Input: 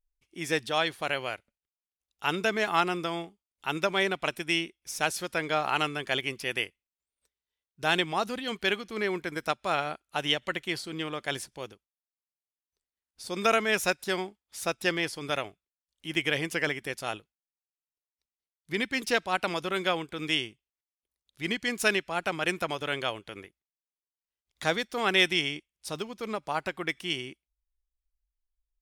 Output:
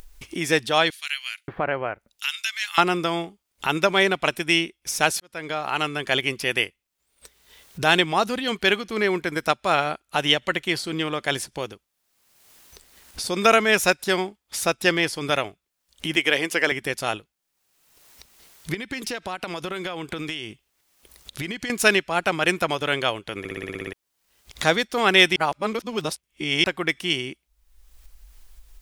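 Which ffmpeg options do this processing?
-filter_complex "[0:a]asettb=1/sr,asplit=3[a][b][c];[a]atrim=end=0.904[d];[b]atrim=start=0.9:end=2.78,asetpts=PTS-STARTPTS,afade=t=in:d=0.004:c=qsin,afade=t=out:st=1.876:d=0.004:c=qsin,acrossover=split=2000[e][f];[e]adelay=580[g];[g][f]amix=inputs=2:normalize=0,atrim=end_sample=82908[h];[c]atrim=start=2.776[i];[d][h]acrossfade=d=0.004:c1=hsin:c2=qsin[j];[j][i]acrossfade=d=0.004:c1=qsin:c2=hsin,asettb=1/sr,asplit=3[k][l][m];[k]atrim=end=16.164[n];[l]atrim=start=16.16:end=16.72,asetpts=PTS-STARTPTS,afade=t=in:d=0.004:c=qsin,afade=t=out:st=0.556:d=0.004:c=qsin,highpass=280[o];[m]atrim=start=16.716[p];[n][o]acrossfade=d=0.004:c1=hsin:c2=qsin[q];[q][p]acrossfade=d=0.004:c1=qsin:c2=hsin,asettb=1/sr,asplit=3[r][s][t];[r]atrim=end=18.744[u];[s]atrim=start=18.74:end=21.7,asetpts=PTS-STARTPTS,afade=t=in:d=0.004:c=qsin,afade=t=out:st=2.956:d=0.004:c=qsin,acompressor=threshold=-40dB:ratio=4:attack=3.2:release=140:knee=1:detection=peak[v];[t]atrim=start=21.696[w];[u][v]acrossfade=d=0.004:c1=hsin:c2=qsin[x];[x][w]acrossfade=d=0.004:c1=qsin:c2=hsin,asplit=13[y][z][aa][ab][ac][ad][ae][af][ag][ah][ai][aj][ak];[y]atrim=end=5.2,asetpts=PTS-STARTPTS,afade=t=out:st=5.196:d=0.004:c=hsin[al];[z]atrim=start=5.2:end=23.452,asetpts=PTS-STARTPTS,afade=t=in:d=1.03[am];[aa]atrim=start=23.388:end=23.452[an];[ab]atrim=start=23.388:end=23.452[ao];[ac]atrim=start=23.388:end=23.452[ap];[ad]atrim=start=23.388:end=23.452[aq];[ae]atrim=start=23.388:end=23.452[ar];[af]atrim=start=23.388:end=23.452[as];[ag]atrim=start=23.388:end=23.452[at];[ah]atrim=start=23.388:end=23.452[au];[ai]atrim=start=23.928:end=25.362[av];[aj]atrim=start=25.358:end=26.642,asetpts=PTS-STARTPTS,areverse[aw];[ak]atrim=start=26.638[ax];[al][am]concat=n=2:v=0:a=1[ay];[ay][an]acrossfade=d=0.004:c1=hsin:c2=hsin[az];[az][ao]acrossfade=d=0.004:c1=hsin:c2=hsin[ba];[ba][ap]acrossfade=d=0.004:c1=hsin:c2=hsin[bb];[bb][aq]acrossfade=d=0.004:c1=hsin:c2=hsin[bc];[bc][ar]acrossfade=d=0.004:c1=hsin:c2=hsin[bd];[bd][as]acrossfade=d=0.004:c1=hsin:c2=hsin[be];[be][at]acrossfade=d=0.004:c1=hsin:c2=hsin[bf];[bf][au]acrossfade=d=0.004:c1=hsin:c2=hsin[bg];[bg][av]acrossfade=d=0.004:c1=hsin:c2=hsin[bh];[bh][aw]acrossfade=d=0.004:c1=hsin:c2=hsin[bi];[bi][ax]acrossfade=d=0.004:c1=hsin:c2=hsin,acompressor=mode=upward:threshold=-31dB:ratio=2.5,volume=7.5dB"

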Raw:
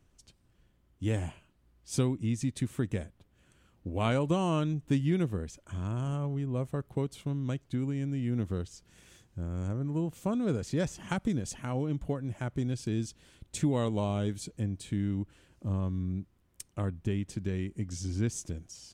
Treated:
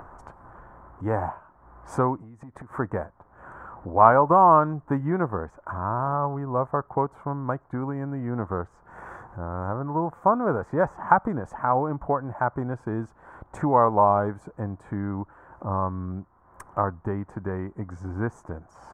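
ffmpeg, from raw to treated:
-filter_complex "[0:a]asplit=3[a][b][c];[a]afade=t=out:st=2.2:d=0.02[d];[b]acompressor=threshold=-43dB:ratio=20:attack=3.2:release=140:knee=1:detection=peak,afade=t=in:st=2.2:d=0.02,afade=t=out:st=2.78:d=0.02[e];[c]afade=t=in:st=2.78:d=0.02[f];[d][e][f]amix=inputs=3:normalize=0,firequalizer=gain_entry='entry(230,0);entry(870,13);entry(1600,3);entry(2700,-22);entry(4000,-27);entry(7300,-19)':delay=0.05:min_phase=1,acompressor=mode=upward:threshold=-36dB:ratio=2.5,equalizer=f=1.1k:w=0.73:g=11"

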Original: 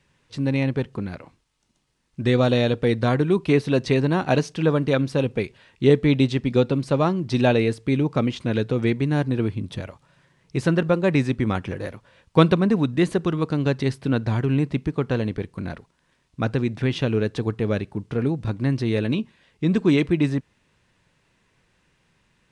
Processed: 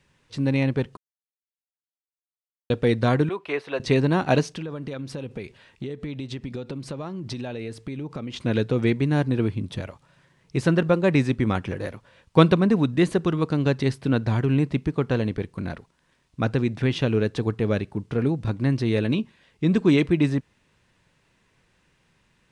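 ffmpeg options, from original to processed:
-filter_complex "[0:a]asettb=1/sr,asplit=3[a][b][c];[a]atrim=end=3.294[d];[b]atrim=start=3.29:end=3.8,asetpts=PTS-STARTPTS,afade=t=in:d=0.004:c=qsin,afade=t=out:st=0.506:d=0.004:c=qsin,acrossover=split=480 3000:gain=0.0631 1 0.2[e][f][g];[e][f][g]amix=inputs=3:normalize=0[h];[c]atrim=start=3.796[i];[d][h]acrossfade=d=0.004:c1=hsin:c2=qsin[j];[j][i]acrossfade=d=0.004:c1=qsin:c2=hsin,asettb=1/sr,asplit=3[k][l][m];[k]atrim=end=4.504[n];[l]atrim=start=4.5:end=8.34,asetpts=PTS-STARTPTS,afade=t=in:d=0.004:c=qsin,afade=t=out:st=3.836:d=0.004:c=qsin,acompressor=threshold=-28dB:ratio=20:attack=3.2:release=140:knee=1:detection=peak[o];[m]atrim=start=8.336[p];[n][o]acrossfade=d=0.004:c1=hsin:c2=qsin[q];[q][p]acrossfade=d=0.004:c1=qsin:c2=hsin,asplit=3[r][s][t];[r]atrim=end=0.97,asetpts=PTS-STARTPTS,afade=t=out:st=0.966:d=0.004:c=hsin[u];[s]atrim=start=0.97:end=2.7,asetpts=PTS-STARTPTS,volume=0[v];[t]atrim=start=2.7,asetpts=PTS-STARTPTS,afade=t=in:d=0.004:c=hsin[w];[u][v][w]concat=n=3:v=0:a=1"

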